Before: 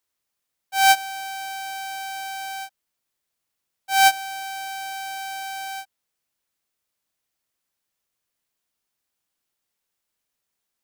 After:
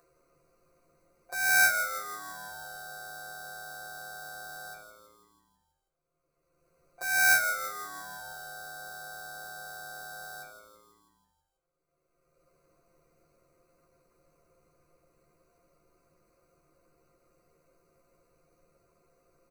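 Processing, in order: local Wiener filter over 25 samples; gate with hold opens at -33 dBFS; upward compressor, threshold -23 dBFS; granular stretch 1.8×, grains 26 ms; static phaser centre 860 Hz, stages 6; doubling 13 ms -5.5 dB; frequency-shifting echo 163 ms, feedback 57%, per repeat -110 Hz, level -10 dB; on a send at -13 dB: reverberation, pre-delay 3 ms; on the sum: trim -3 dB

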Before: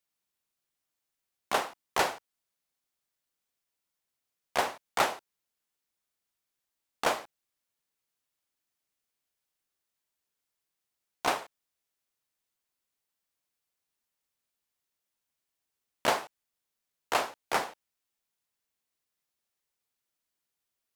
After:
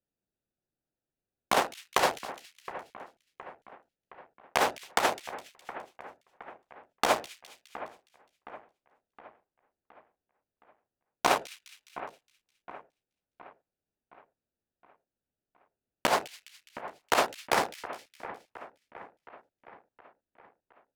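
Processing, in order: local Wiener filter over 41 samples; compressor with a negative ratio -28 dBFS, ratio -0.5; two-band feedback delay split 2.3 kHz, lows 717 ms, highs 207 ms, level -14.5 dB; trim +5.5 dB

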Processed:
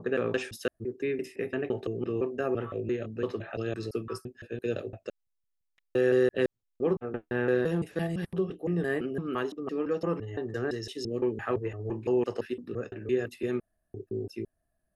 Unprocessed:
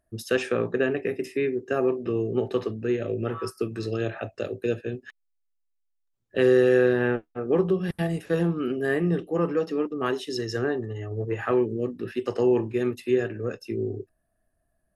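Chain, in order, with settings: slices played last to first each 170 ms, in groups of 5; trim -5 dB

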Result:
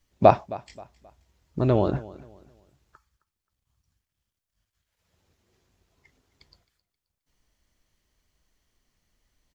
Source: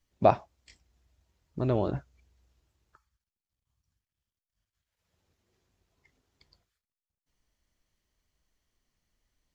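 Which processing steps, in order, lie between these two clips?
feedback delay 265 ms, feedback 32%, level -19.5 dB; trim +6 dB

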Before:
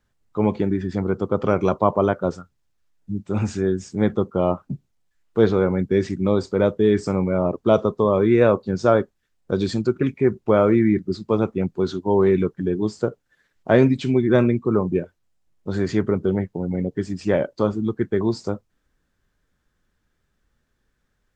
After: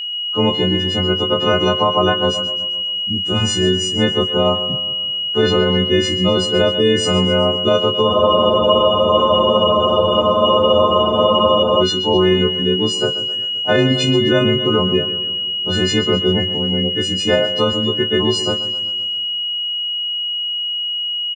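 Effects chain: partials quantised in pitch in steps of 3 st; whistle 2.9 kHz -28 dBFS; doubling 21 ms -12.5 dB; two-band feedback delay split 350 Hz, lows 174 ms, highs 130 ms, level -14 dB; loudness maximiser +8.5 dB; spectral freeze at 8.11 s, 3.70 s; trim -4 dB

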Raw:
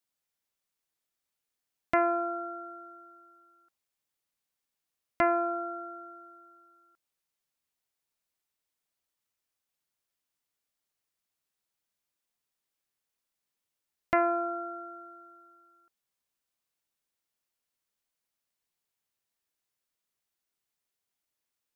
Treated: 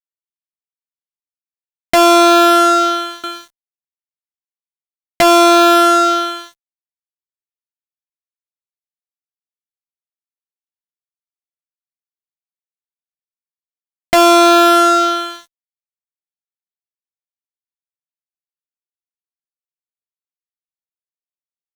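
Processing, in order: 3.23–5.22 s: comb 5.9 ms, depth 86%; band-stop 550 Hz, Q 12; fuzz box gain 46 dB, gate -53 dBFS; trim +5.5 dB

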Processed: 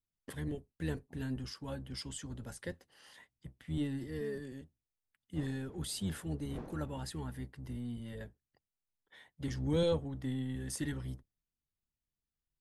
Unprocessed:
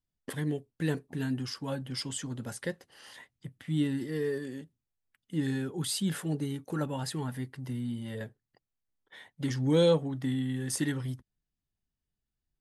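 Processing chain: octave divider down 1 oct, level -4 dB; 5.35–6.98 s: wind noise 420 Hz -42 dBFS; trim -7.5 dB

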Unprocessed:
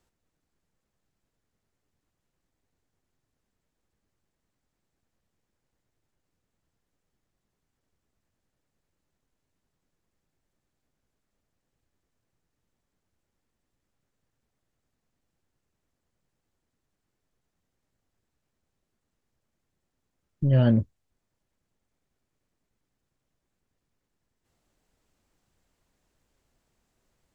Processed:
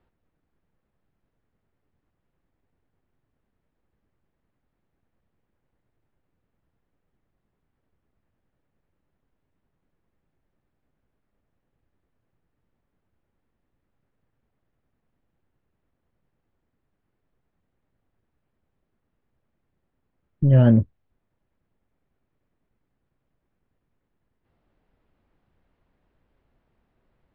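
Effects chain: distance through air 430 m; trim +5.5 dB

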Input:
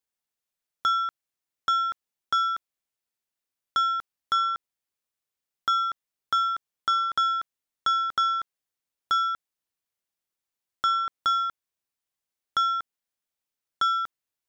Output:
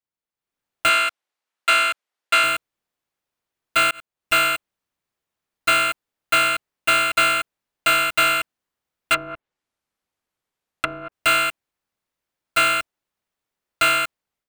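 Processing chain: bit-reversed sample order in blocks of 256 samples; 0.89–2.44 s: frequency weighting A; 9.14–11.12 s: low-pass that closes with the level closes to 470 Hz, closed at -22 dBFS; treble shelf 3.2 kHz -11.5 dB; level rider gain up to 12 dB; 3.91–4.35 s: fade in; trim -1.5 dB

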